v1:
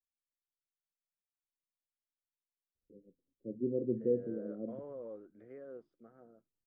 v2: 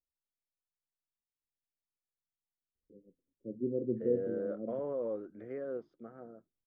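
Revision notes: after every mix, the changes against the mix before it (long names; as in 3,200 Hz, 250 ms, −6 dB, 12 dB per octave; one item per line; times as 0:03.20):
second voice +9.5 dB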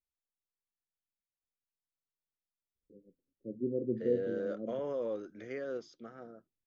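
second voice: remove low-pass filter 1,100 Hz 12 dB per octave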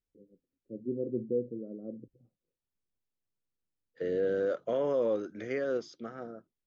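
first voice: entry −2.75 s
second voice +7.0 dB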